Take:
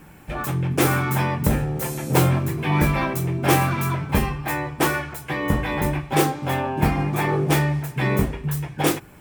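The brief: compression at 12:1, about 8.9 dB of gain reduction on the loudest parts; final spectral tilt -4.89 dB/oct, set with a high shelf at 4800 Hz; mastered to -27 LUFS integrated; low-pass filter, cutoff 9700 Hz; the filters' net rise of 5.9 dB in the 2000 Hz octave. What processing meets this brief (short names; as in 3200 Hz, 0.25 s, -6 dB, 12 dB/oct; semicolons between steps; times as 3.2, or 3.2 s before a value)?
LPF 9700 Hz; bell 2000 Hz +6 dB; high shelf 4800 Hz +8 dB; compressor 12:1, threshold -21 dBFS; gain -1 dB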